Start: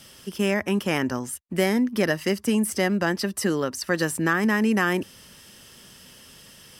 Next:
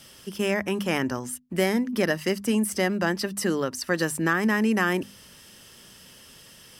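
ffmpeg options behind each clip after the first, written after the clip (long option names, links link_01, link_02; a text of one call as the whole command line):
ffmpeg -i in.wav -af "bandreject=frequency=50:width_type=h:width=6,bandreject=frequency=100:width_type=h:width=6,bandreject=frequency=150:width_type=h:width=6,bandreject=frequency=200:width_type=h:width=6,bandreject=frequency=250:width_type=h:width=6,volume=-1dB" out.wav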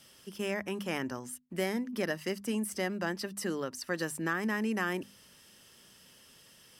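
ffmpeg -i in.wav -af "lowshelf=frequency=92:gain=-6,volume=-8.5dB" out.wav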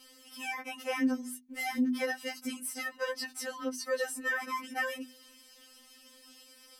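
ffmpeg -i in.wav -af "afftfilt=real='re*3.46*eq(mod(b,12),0)':imag='im*3.46*eq(mod(b,12),0)':win_size=2048:overlap=0.75,volume=3.5dB" out.wav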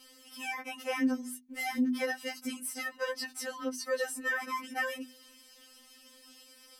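ffmpeg -i in.wav -af anull out.wav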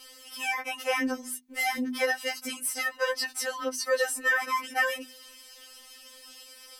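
ffmpeg -i in.wav -af "equalizer=frequency=220:width_type=o:width=0.98:gain=-12.5,volume=7.5dB" out.wav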